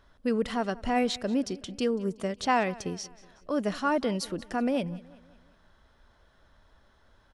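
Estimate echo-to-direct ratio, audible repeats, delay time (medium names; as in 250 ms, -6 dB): -20.0 dB, 3, 186 ms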